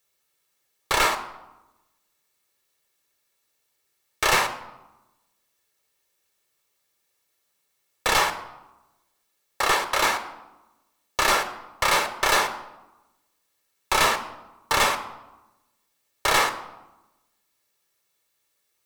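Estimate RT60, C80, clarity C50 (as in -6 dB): 1.0 s, 14.5 dB, 12.5 dB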